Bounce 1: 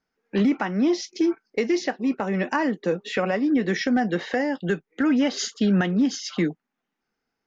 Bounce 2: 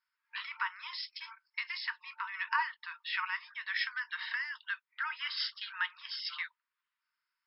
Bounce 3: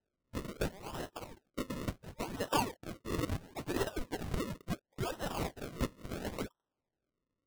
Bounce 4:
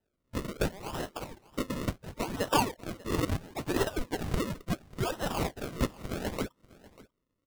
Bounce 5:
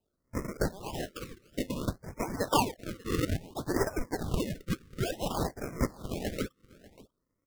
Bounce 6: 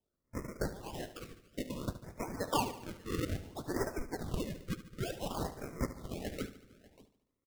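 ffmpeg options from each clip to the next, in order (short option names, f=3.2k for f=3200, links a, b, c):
-af "afftfilt=real='re*between(b*sr/4096,900,5400)':imag='im*between(b*sr/4096,900,5400)':win_size=4096:overlap=0.75,volume=-3.5dB"
-af "acrusher=samples=38:mix=1:aa=0.000001:lfo=1:lforange=38:lforate=0.72"
-af "aecho=1:1:592:0.0944,volume=5.5dB"
-af "afftfilt=real='re*(1-between(b*sr/1024,750*pow(3600/750,0.5+0.5*sin(2*PI*0.57*pts/sr))/1.41,750*pow(3600/750,0.5+0.5*sin(2*PI*0.57*pts/sr))*1.41))':imag='im*(1-between(b*sr/1024,750*pow(3600/750,0.5+0.5*sin(2*PI*0.57*pts/sr))/1.41,750*pow(3600/750,0.5+0.5*sin(2*PI*0.57*pts/sr))*1.41))':win_size=1024:overlap=0.75"
-af "aecho=1:1:73|146|219|292|365|438:0.224|0.121|0.0653|0.0353|0.019|0.0103,volume=-6dB"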